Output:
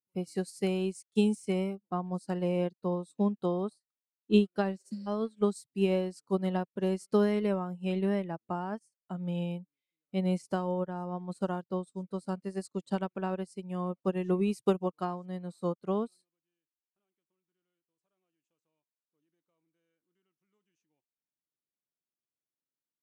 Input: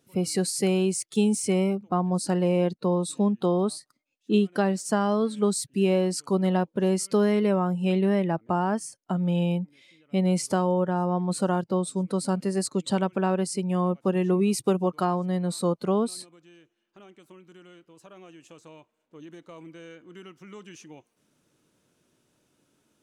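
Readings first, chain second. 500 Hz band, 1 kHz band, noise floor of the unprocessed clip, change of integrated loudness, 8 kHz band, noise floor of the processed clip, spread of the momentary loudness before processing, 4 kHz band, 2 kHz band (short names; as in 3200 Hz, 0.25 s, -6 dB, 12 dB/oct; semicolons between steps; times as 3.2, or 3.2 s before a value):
-6.5 dB, -8.5 dB, -75 dBFS, -7.0 dB, -19.5 dB, under -85 dBFS, 5 LU, -9.0 dB, -7.0 dB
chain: spectral repair 4.82–5.04, 380–5000 Hz before; upward expander 2.5:1, over -42 dBFS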